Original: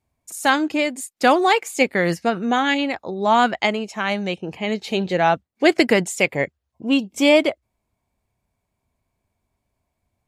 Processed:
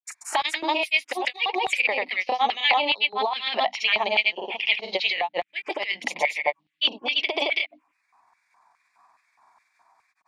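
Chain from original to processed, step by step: repeated pitch sweeps +1.5 st, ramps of 1.164 s; LPF 4700 Hz 12 dB/oct; notches 50/100/150/200/250/300 Hz; negative-ratio compressor -22 dBFS, ratio -0.5; envelope phaser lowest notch 510 Hz, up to 1500 Hz, full sweep at -24 dBFS; grains 0.1 s, grains 21/s, spray 0.215 s, pitch spread up and down by 0 st; LFO high-pass square 2.4 Hz 890–2100 Hz; three-band squash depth 40%; gain +7.5 dB

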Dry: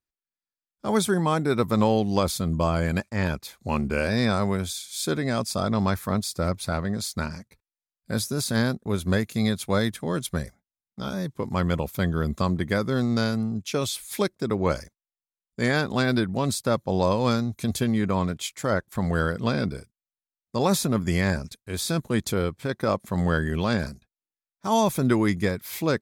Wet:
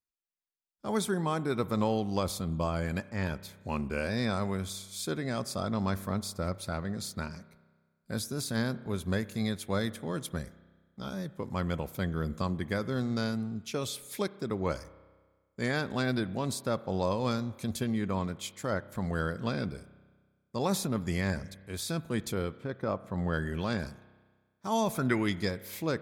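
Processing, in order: 22.55–23.32 LPF 1400 Hz -> 2400 Hz 6 dB/oct; 24.92–25.49 bell 1100 Hz -> 5200 Hz +13.5 dB 0.47 oct; spring tank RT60 1.5 s, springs 31 ms, chirp 65 ms, DRR 16.5 dB; gain -7.5 dB

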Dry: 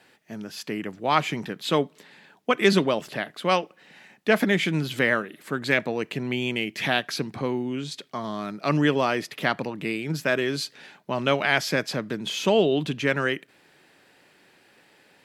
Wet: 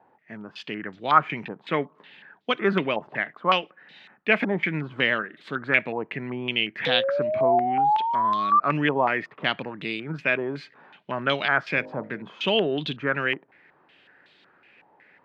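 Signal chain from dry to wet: 6.86–8.6 painted sound rise 490–1200 Hz -22 dBFS; 11.73–12.23 de-hum 51.96 Hz, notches 18; stepped low-pass 5.4 Hz 900–3700 Hz; gain -4 dB

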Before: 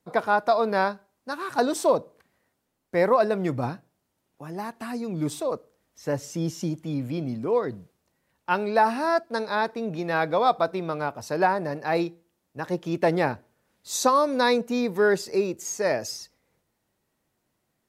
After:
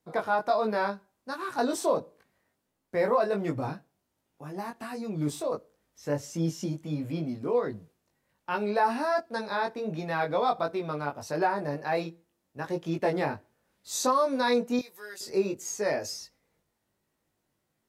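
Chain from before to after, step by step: 14.79–15.21 differentiator; in parallel at -3 dB: limiter -18.5 dBFS, peak gain reduction 9.5 dB; on the sum: chorus 1.4 Hz, delay 18.5 ms, depth 2.4 ms; gain -4.5 dB

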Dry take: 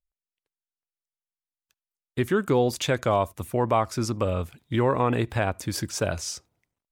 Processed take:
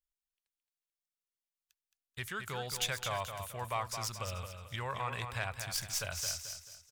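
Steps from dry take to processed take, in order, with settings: tracing distortion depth 0.056 ms; passive tone stack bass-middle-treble 10-0-10; feedback echo 0.219 s, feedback 36%, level -7.5 dB; gain -2 dB

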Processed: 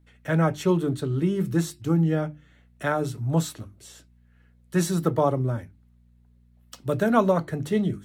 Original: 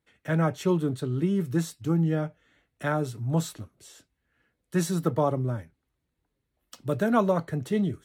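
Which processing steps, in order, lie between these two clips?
hum 60 Hz, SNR 32 dB; notches 50/100/150/200/250/300/350 Hz; gain +3 dB

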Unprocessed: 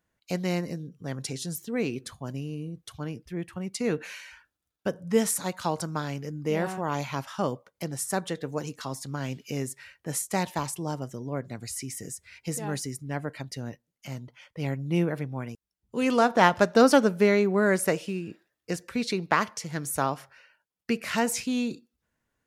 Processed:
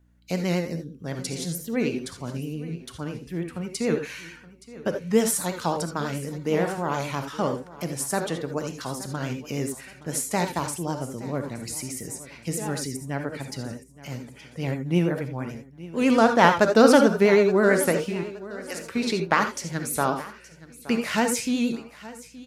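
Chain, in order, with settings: 18.23–18.82 HPF 730 Hz; feedback echo 0.871 s, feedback 34%, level -18 dB; hum 60 Hz, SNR 33 dB; reverb, pre-delay 3 ms, DRR 6 dB; vibrato 9.1 Hz 59 cents; gain +2 dB

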